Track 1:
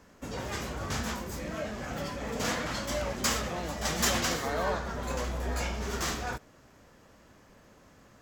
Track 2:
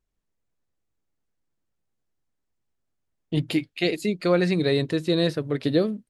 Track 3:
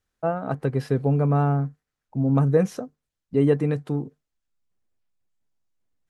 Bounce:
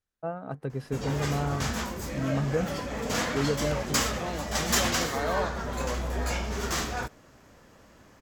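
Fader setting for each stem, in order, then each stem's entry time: +2.5 dB, mute, -9.0 dB; 0.70 s, mute, 0.00 s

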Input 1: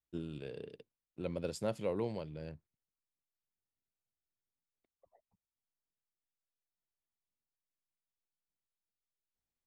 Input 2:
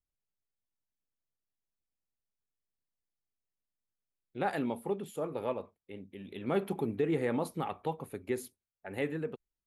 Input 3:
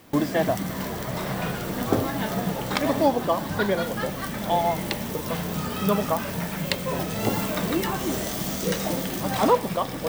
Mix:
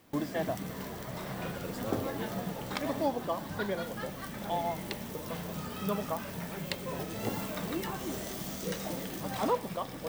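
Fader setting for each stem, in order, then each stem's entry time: -5.0 dB, -15.5 dB, -10.0 dB; 0.20 s, 0.00 s, 0.00 s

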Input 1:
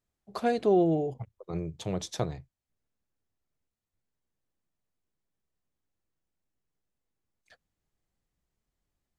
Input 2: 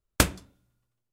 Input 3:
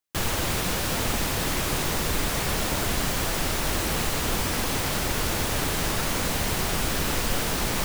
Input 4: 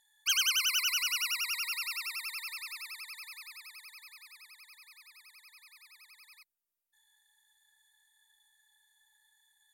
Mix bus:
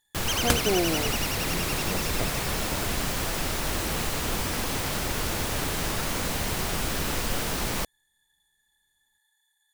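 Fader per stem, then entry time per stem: -3.0 dB, -4.0 dB, -2.5 dB, -2.0 dB; 0.00 s, 0.30 s, 0.00 s, 0.00 s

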